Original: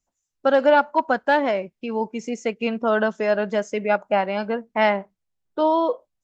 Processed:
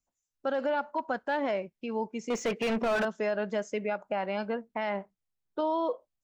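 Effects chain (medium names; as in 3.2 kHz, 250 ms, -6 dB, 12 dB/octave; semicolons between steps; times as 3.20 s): peak limiter -14.5 dBFS, peak gain reduction 9 dB; 2.30–3.05 s: overdrive pedal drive 29 dB, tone 1.9 kHz, clips at -14.5 dBFS; trim -6.5 dB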